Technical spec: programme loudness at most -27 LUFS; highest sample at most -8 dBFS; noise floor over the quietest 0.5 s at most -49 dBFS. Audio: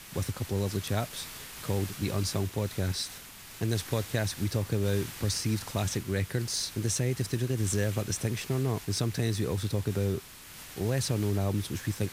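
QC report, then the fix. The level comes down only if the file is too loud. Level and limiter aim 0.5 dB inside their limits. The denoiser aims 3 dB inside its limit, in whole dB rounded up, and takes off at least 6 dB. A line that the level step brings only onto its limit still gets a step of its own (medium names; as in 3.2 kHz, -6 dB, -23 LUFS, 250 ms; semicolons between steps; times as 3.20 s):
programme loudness -31.0 LUFS: pass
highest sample -14.0 dBFS: pass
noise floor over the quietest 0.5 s -47 dBFS: fail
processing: noise reduction 6 dB, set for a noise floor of -47 dBFS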